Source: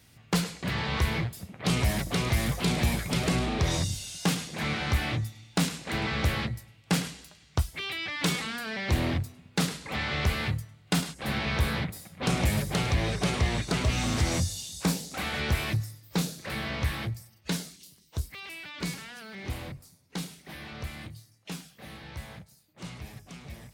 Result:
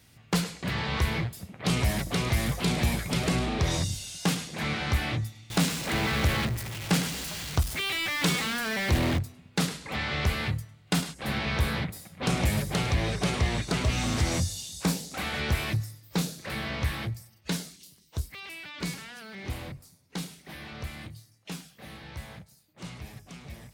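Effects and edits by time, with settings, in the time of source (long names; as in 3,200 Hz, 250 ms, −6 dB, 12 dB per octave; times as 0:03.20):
0:05.50–0:09.19: converter with a step at zero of −31 dBFS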